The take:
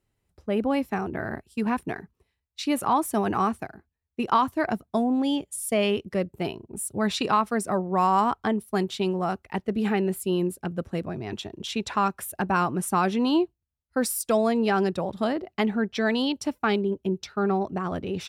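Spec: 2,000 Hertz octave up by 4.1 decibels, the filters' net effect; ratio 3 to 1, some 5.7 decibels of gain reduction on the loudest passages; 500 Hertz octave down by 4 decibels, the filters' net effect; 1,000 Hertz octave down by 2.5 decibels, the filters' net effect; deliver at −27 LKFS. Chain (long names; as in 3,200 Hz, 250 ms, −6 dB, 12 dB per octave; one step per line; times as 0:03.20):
parametric band 500 Hz −5 dB
parametric band 1,000 Hz −3.5 dB
parametric band 2,000 Hz +7 dB
downward compressor 3 to 1, threshold −27 dBFS
level +4.5 dB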